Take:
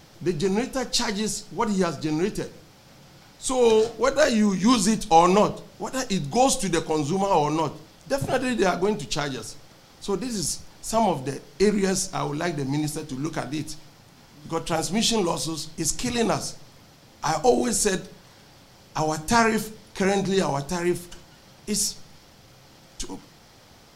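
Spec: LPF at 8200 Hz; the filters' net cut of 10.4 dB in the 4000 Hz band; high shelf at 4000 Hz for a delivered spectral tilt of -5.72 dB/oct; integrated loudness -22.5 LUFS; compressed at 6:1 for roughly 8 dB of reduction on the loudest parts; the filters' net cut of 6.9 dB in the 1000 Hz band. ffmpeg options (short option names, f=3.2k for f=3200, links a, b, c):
-af "lowpass=8.2k,equalizer=f=1k:t=o:g=-8.5,highshelf=f=4k:g=-8,equalizer=f=4k:t=o:g=-7.5,acompressor=threshold=-24dB:ratio=6,volume=8.5dB"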